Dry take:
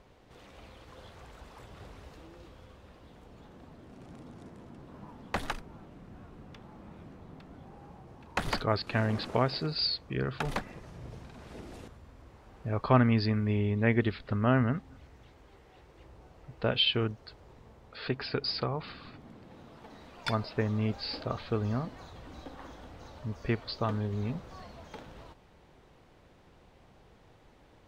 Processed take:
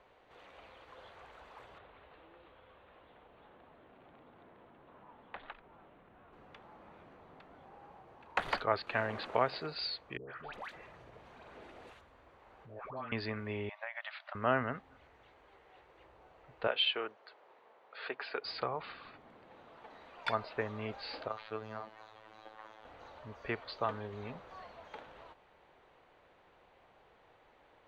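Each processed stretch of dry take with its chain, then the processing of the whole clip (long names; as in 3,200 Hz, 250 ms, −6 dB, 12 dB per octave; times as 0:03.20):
0:01.78–0:06.33: downward compressor 2 to 1, threshold −50 dBFS + Butterworth low-pass 4,000 Hz 48 dB per octave
0:10.17–0:13.12: all-pass dispersion highs, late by 135 ms, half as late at 1,000 Hz + downward compressor 2.5 to 1, threshold −42 dBFS
0:13.69–0:14.35: linear-phase brick-wall band-pass 560–6,300 Hz + downward compressor 10 to 1, threshold −36 dBFS
0:16.67–0:18.45: band-pass filter 390–7,200 Hz + high-shelf EQ 4,700 Hz −4.5 dB
0:21.28–0:22.85: low-shelf EQ 340 Hz −6.5 dB + phases set to zero 109 Hz
whole clip: three-way crossover with the lows and the highs turned down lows −15 dB, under 430 Hz, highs −15 dB, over 3,600 Hz; notch filter 5,200 Hz, Q 11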